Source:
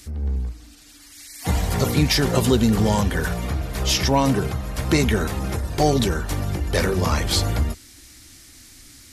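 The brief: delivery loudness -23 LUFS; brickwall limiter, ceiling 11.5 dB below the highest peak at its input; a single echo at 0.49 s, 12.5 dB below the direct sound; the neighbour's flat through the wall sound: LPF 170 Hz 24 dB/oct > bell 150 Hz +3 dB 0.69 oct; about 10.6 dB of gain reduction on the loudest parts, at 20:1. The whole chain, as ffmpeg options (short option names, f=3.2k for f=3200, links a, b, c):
-af "acompressor=threshold=-23dB:ratio=20,alimiter=limit=-24dB:level=0:latency=1,lowpass=f=170:w=0.5412,lowpass=f=170:w=1.3066,equalizer=f=150:t=o:w=0.69:g=3,aecho=1:1:490:0.237,volume=13dB"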